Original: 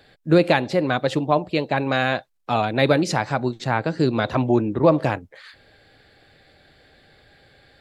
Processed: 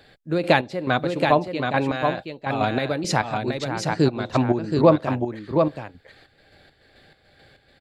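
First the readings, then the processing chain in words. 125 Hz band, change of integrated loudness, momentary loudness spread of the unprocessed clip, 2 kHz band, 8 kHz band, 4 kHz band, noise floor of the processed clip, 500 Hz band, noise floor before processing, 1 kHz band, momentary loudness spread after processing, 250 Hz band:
-1.5 dB, -1.5 dB, 6 LU, -1.5 dB, +2.0 dB, -1.5 dB, -61 dBFS, -1.0 dB, -56 dBFS, 0.0 dB, 9 LU, -1.5 dB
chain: chopper 2.3 Hz, depth 65%, duty 40%; on a send: echo 0.725 s -4.5 dB; on the sum: gain +1 dB

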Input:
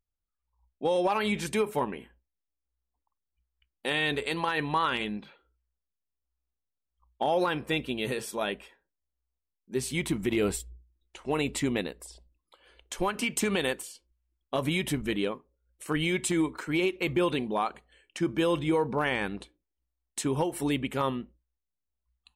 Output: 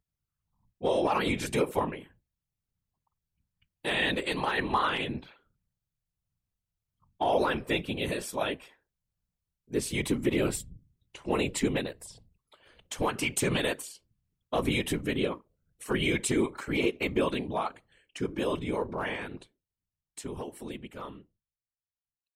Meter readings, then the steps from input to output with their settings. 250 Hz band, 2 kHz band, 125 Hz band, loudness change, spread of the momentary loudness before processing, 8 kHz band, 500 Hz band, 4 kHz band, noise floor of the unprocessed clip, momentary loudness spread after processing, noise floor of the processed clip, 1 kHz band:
-1.5 dB, -0.5 dB, -1.0 dB, -0.5 dB, 12 LU, -0.5 dB, -1.0 dB, -0.5 dB, under -85 dBFS, 15 LU, under -85 dBFS, -1.0 dB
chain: ending faded out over 6.17 s; whisperiser

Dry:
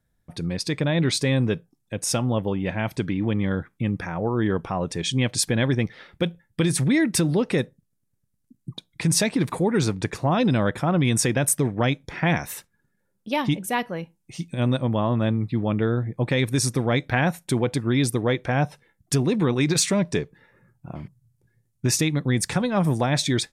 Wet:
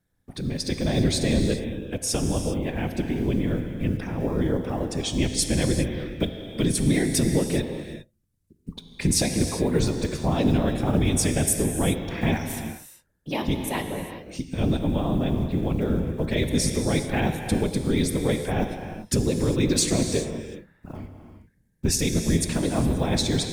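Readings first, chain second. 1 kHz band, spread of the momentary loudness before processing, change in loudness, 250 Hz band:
-4.5 dB, 10 LU, -1.5 dB, -0.5 dB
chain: block floating point 7-bit; dynamic EQ 1300 Hz, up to -8 dB, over -40 dBFS, Q 0.8; whisperiser; non-linear reverb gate 0.43 s flat, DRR 5.5 dB; gain -1 dB

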